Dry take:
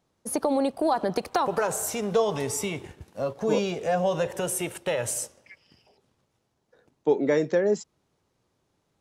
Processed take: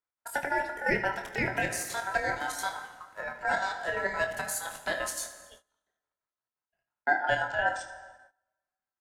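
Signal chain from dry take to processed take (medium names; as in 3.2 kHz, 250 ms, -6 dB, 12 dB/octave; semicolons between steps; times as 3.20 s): ring modulator 1.4 kHz; frequency shift -240 Hz; square tremolo 5.8 Hz, depth 60%, duty 60%; early reflections 25 ms -8 dB, 76 ms -16 dB; plate-style reverb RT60 1.7 s, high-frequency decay 0.7×, DRR 9 dB; gate -52 dBFS, range -20 dB; trim -1.5 dB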